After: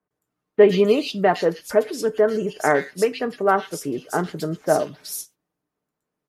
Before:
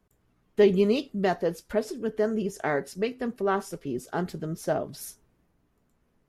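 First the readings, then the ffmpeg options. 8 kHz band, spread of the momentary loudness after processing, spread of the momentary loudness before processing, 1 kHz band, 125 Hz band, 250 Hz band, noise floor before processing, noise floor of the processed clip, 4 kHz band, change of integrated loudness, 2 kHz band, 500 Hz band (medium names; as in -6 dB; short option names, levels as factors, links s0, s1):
+9.5 dB, 12 LU, 12 LU, +9.0 dB, +3.0 dB, +3.5 dB, -70 dBFS, -83 dBFS, +8.0 dB, +6.5 dB, +8.0 dB, +7.0 dB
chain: -filter_complex "[0:a]highpass=f=350:p=1,aecho=1:1:6.6:0.34,agate=range=0.158:threshold=0.00178:ratio=16:detection=peak,acrossover=split=2500[s0][s1];[s1]adelay=110[s2];[s0][s2]amix=inputs=2:normalize=0,volume=2.82"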